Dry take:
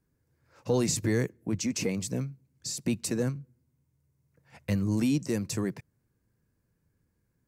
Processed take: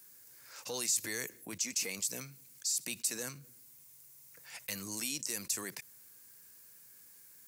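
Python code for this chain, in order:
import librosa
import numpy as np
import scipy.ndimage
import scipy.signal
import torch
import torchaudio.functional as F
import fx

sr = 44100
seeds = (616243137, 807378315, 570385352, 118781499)

y = np.diff(x, prepend=0.0)
y = fx.env_flatten(y, sr, amount_pct=50)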